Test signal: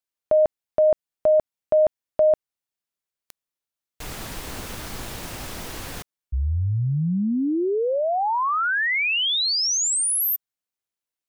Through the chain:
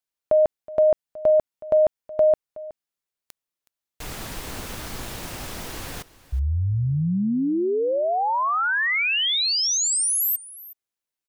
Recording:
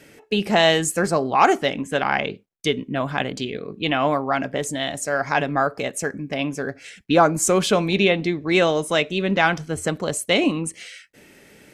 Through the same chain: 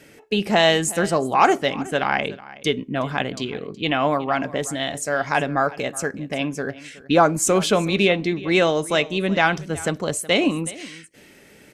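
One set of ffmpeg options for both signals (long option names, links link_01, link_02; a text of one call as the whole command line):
ffmpeg -i in.wav -af "aecho=1:1:370:0.112" out.wav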